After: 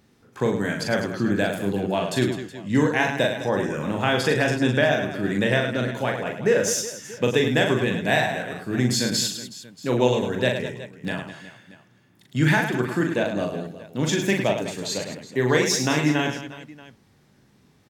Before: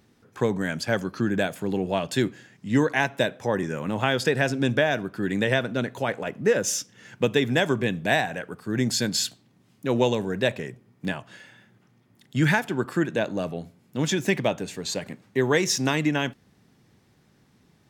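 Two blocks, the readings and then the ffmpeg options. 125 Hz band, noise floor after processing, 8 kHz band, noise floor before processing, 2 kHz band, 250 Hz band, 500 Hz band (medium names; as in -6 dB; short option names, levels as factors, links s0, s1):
+2.5 dB, -59 dBFS, +2.0 dB, -62 dBFS, +2.0 dB, +2.0 dB, +2.5 dB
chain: -af "aecho=1:1:40|104|206.4|370.2|632.4:0.631|0.398|0.251|0.158|0.1"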